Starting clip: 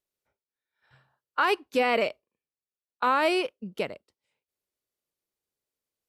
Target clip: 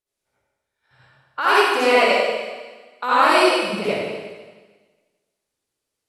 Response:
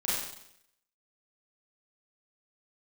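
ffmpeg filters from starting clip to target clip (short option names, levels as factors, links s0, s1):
-filter_complex "[0:a]asettb=1/sr,asplit=3[s0][s1][s2];[s0]atrim=end=1.404[s3];[s1]atrim=start=1.4:end=3.54,asetpts=PTS-STARTPTS,afade=t=in:d=0.004:c=qsin,afade=t=out:st=2.136:d=0.004:c=qsin,bass=f=250:g=-9,treble=f=4000:g=5[s4];[s2]atrim=start=3.536[s5];[s3][s4]acrossfade=d=0.004:c1=hsin:c2=qsin[s6];[s6][s5]acrossfade=d=0.004:c1=qsin:c2=hsin[s7];[1:a]atrim=start_sample=2205,asetrate=24255,aresample=44100[s8];[s7][s8]afir=irnorm=-1:irlink=0,volume=0.708"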